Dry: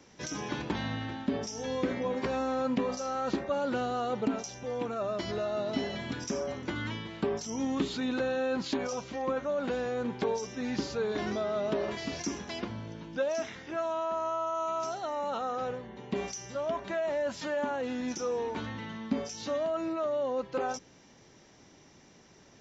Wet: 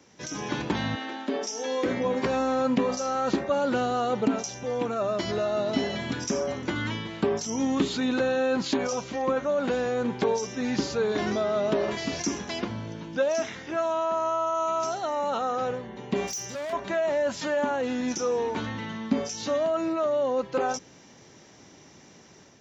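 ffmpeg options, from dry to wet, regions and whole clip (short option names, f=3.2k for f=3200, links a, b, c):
-filter_complex "[0:a]asettb=1/sr,asplit=3[a][b][c];[a]atrim=end=0.954[d];[b]atrim=start=0.95:end=1.86,asetpts=PTS-STARTPTS,afade=t=in:d=0.004:c=qsin,afade=t=out:st=0.906:d=0.004:c=qsin,highpass=f=290:w=0.5412,highpass=f=290:w=1.3066,volume=23.5dB,asoftclip=hard,volume=-23.5dB[e];[c]atrim=start=1.856[f];[d][e]acrossfade=d=0.004:c1=hsin:c2=qsin[g];[g][f]acrossfade=d=0.004:c1=qsin:c2=hsin,asettb=1/sr,asplit=3[h][i][j];[h]atrim=end=16.274[k];[i]atrim=start=16.27:end=16.73,asetpts=PTS-STARTPTS,afade=t=in:d=0.004:c=qsin,afade=t=out:st=0.456:d=0.004:c=qsin,bass=f=250:g=-1,treble=f=4k:g=5,asoftclip=type=hard:threshold=-37dB[l];[j]atrim=start=16.726[m];[k][l]acrossfade=d=0.004:c1=hsin:c2=qsin[n];[n][m]acrossfade=d=0.004:c1=qsin:c2=hsin,highpass=71,equalizer=f=6.7k:w=3.7:g=3,dynaudnorm=f=270:g=3:m=5.5dB"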